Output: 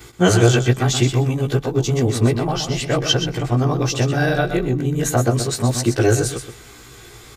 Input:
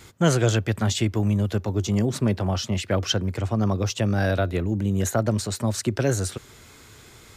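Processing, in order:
every overlapping window played backwards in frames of 34 ms
comb filter 2.6 ms, depth 35%
repeating echo 125 ms, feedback 18%, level −8.5 dB
level +8.5 dB

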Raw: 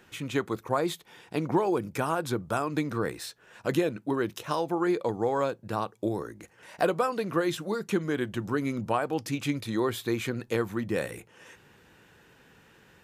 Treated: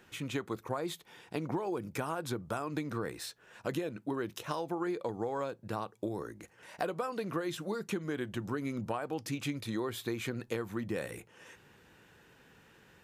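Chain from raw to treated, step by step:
downward compressor, threshold −28 dBFS, peak gain reduction 8.5 dB
level −3 dB

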